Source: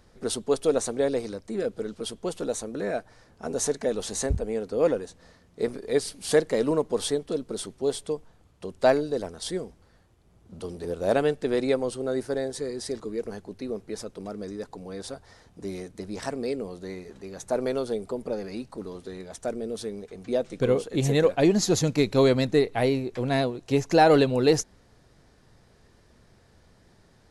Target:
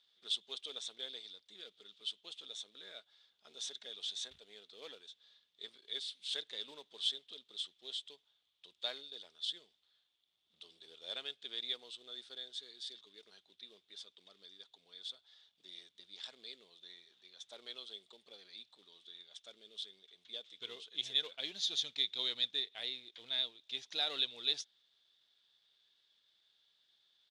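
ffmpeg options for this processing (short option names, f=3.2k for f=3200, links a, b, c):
-filter_complex "[0:a]asplit=2[a][b];[b]acrusher=bits=4:mode=log:mix=0:aa=0.000001,volume=-6.5dB[c];[a][c]amix=inputs=2:normalize=0,asetrate=41625,aresample=44100,atempo=1.05946,bandpass=f=3.5k:t=q:w=10:csg=0,aeval=exprs='0.0944*(cos(1*acos(clip(val(0)/0.0944,-1,1)))-cos(1*PI/2))+0.000596*(cos(7*acos(clip(val(0)/0.0944,-1,1)))-cos(7*PI/2))':c=same,volume=3dB"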